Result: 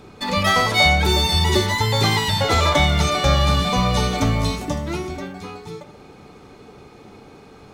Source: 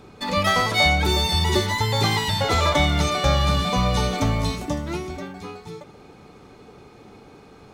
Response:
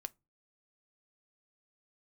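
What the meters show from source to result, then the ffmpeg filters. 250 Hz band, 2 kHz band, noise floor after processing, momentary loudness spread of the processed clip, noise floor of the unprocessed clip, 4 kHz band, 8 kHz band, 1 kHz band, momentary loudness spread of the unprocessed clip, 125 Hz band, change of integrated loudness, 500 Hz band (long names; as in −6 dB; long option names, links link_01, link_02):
+2.5 dB, +3.0 dB, −45 dBFS, 18 LU, −48 dBFS, +3.0 dB, +3.0 dB, +2.5 dB, 16 LU, +2.5 dB, +2.5 dB, +2.0 dB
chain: -af "bandreject=frequency=58.88:width_type=h:width=4,bandreject=frequency=117.76:width_type=h:width=4,bandreject=frequency=176.64:width_type=h:width=4,bandreject=frequency=235.52:width_type=h:width=4,bandreject=frequency=294.4:width_type=h:width=4,bandreject=frequency=353.28:width_type=h:width=4,bandreject=frequency=412.16:width_type=h:width=4,bandreject=frequency=471.04:width_type=h:width=4,bandreject=frequency=529.92:width_type=h:width=4,bandreject=frequency=588.8:width_type=h:width=4,bandreject=frequency=647.68:width_type=h:width=4,bandreject=frequency=706.56:width_type=h:width=4,bandreject=frequency=765.44:width_type=h:width=4,bandreject=frequency=824.32:width_type=h:width=4,bandreject=frequency=883.2:width_type=h:width=4,bandreject=frequency=942.08:width_type=h:width=4,bandreject=frequency=1000.96:width_type=h:width=4,bandreject=frequency=1059.84:width_type=h:width=4,bandreject=frequency=1118.72:width_type=h:width=4,bandreject=frequency=1177.6:width_type=h:width=4,bandreject=frequency=1236.48:width_type=h:width=4,bandreject=frequency=1295.36:width_type=h:width=4,bandreject=frequency=1354.24:width_type=h:width=4,bandreject=frequency=1413.12:width_type=h:width=4,bandreject=frequency=1472:width_type=h:width=4,bandreject=frequency=1530.88:width_type=h:width=4,bandreject=frequency=1589.76:width_type=h:width=4,bandreject=frequency=1648.64:width_type=h:width=4,bandreject=frequency=1707.52:width_type=h:width=4,bandreject=frequency=1766.4:width_type=h:width=4,volume=3dB"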